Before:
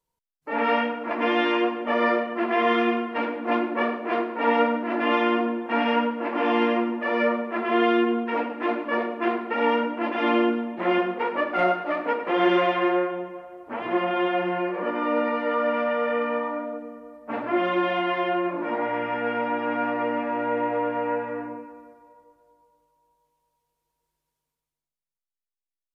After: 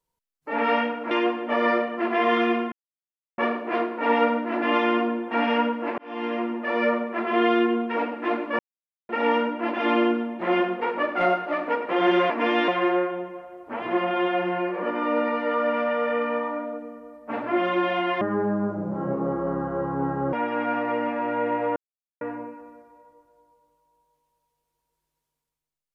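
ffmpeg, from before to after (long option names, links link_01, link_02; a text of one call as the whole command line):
ffmpeg -i in.wav -filter_complex "[0:a]asplit=13[link_01][link_02][link_03][link_04][link_05][link_06][link_07][link_08][link_09][link_10][link_11][link_12][link_13];[link_01]atrim=end=1.112[link_14];[link_02]atrim=start=1.488:end=3.1,asetpts=PTS-STARTPTS,afade=type=out:start_time=1.608:duration=0.004:curve=hsin[link_15];[link_03]atrim=start=3.1:end=3.76,asetpts=PTS-STARTPTS,volume=0[link_16];[link_04]atrim=start=3.76:end=6.36,asetpts=PTS-STARTPTS,afade=type=in:duration=0.004:curve=hsin,afade=type=out:start_time=2.596:duration=0.004:curve=hsin[link_17];[link_05]atrim=start=6.36:end=8.97,asetpts=PTS-STARTPTS,afade=type=in:duration=0.94:curve=qsin,afade=type=out:start_time=2.606:duration=0.004:curve=hsin[link_18];[link_06]atrim=start=8.97:end=9.47,asetpts=PTS-STARTPTS,volume=0[link_19];[link_07]atrim=start=9.47:end=12.682,asetpts=PTS-STARTPTS,afade=type=in:duration=0.004:curve=hsin[link_20];[link_08]atrim=start=1.108:end=1.492[link_21];[link_09]atrim=start=12.678:end=18.214[link_22];[link_10]atrim=start=18.21:end=19.44,asetpts=PTS-STARTPTS,asetrate=25578,aresample=44100,atrim=end_sample=93522,asetpts=PTS-STARTPTS[link_23];[link_11]atrim=start=19.436:end=20.87,asetpts=PTS-STARTPTS,afade=type=out:start_time=1.43:duration=0.004:curve=hsin[link_24];[link_12]atrim=start=20.87:end=21.32,asetpts=PTS-STARTPTS,volume=0[link_25];[link_13]atrim=start=21.32,asetpts=PTS-STARTPTS,afade=type=in:duration=0.004:curve=hsin[link_26];[link_15][link_16][link_17][link_18][link_19][link_20]concat=n=6:v=0:a=1[link_27];[link_14][link_27]acrossfade=duration=0.004:curve1=hsin:curve2=hsin[link_28];[link_28][link_21]acrossfade=duration=0.004:curve1=hsin:curve2=hsin[link_29];[link_29][link_22]acrossfade=duration=0.004:curve1=hsin:curve2=hsin[link_30];[link_30][link_23]acrossfade=duration=0.004:curve1=hsin:curve2=hsin[link_31];[link_24][link_25][link_26]concat=n=3:v=0:a=1[link_32];[link_31][link_32]acrossfade=duration=0.004:curve1=hsin:curve2=hsin" out.wav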